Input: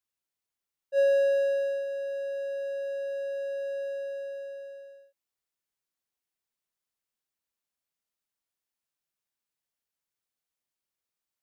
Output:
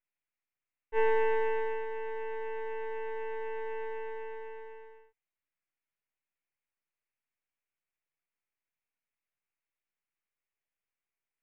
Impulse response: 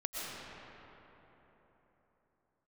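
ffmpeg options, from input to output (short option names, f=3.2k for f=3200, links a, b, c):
-af "afreqshift=-110,aeval=exprs='max(val(0),0)':c=same,highshelf=f=3.3k:t=q:w=3:g=-12"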